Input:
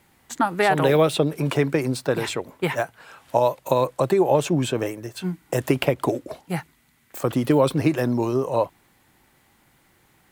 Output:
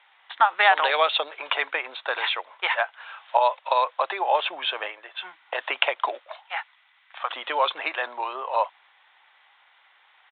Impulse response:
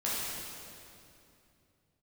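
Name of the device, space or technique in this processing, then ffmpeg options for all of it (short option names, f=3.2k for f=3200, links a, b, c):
musical greeting card: -filter_complex "[0:a]asettb=1/sr,asplit=3[a][b][c];[a]atrim=end=6.194[d];[b]atrim=start=6.19:end=7.3,asetpts=PTS-STARTPTS,afade=t=in:d=0.004:c=qsin,afade=t=out:st=1.106:d=0.004:c=qsin,highpass=f=620:w=0.5412,highpass=f=620:w=1.3066[e];[c]atrim=start=7.296[f];[d][e]acrossfade=d=0.004:c1=hsin:c2=qsin[g];[g][f]acrossfade=d=0.004:c1=qsin:c2=hsin,aresample=8000,aresample=44100,highpass=f=780:w=0.5412,highpass=f=780:w=1.3066,equalizer=f=3.6k:t=o:w=0.51:g=4,volume=5dB"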